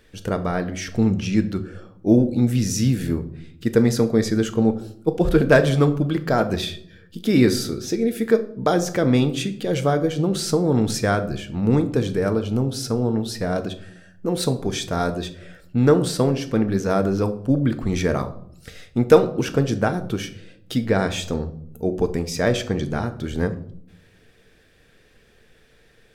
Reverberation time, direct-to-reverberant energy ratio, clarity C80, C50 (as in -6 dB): 0.65 s, 8.5 dB, 18.0 dB, 14.5 dB